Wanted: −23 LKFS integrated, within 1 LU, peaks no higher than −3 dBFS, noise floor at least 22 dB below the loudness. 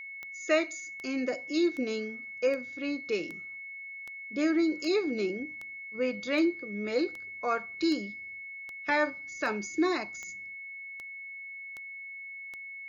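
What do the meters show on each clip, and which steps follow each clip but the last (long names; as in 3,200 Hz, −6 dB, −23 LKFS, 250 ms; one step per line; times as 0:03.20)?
number of clicks 17; interfering tone 2,200 Hz; level of the tone −40 dBFS; integrated loudness −32.5 LKFS; sample peak −14.0 dBFS; target loudness −23.0 LKFS
→ click removal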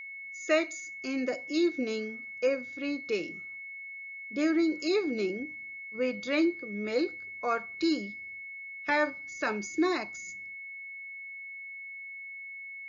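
number of clicks 0; interfering tone 2,200 Hz; level of the tone −40 dBFS
→ notch filter 2,200 Hz, Q 30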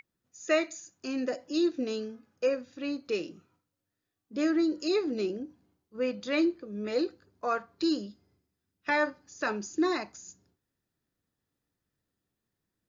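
interfering tone none found; integrated loudness −31.0 LKFS; sample peak −14.0 dBFS; target loudness −23.0 LKFS
→ level +8 dB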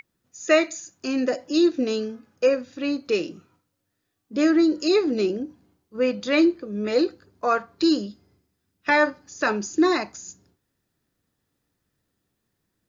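integrated loudness −23.0 LKFS; sample peak −6.0 dBFS; background noise floor −77 dBFS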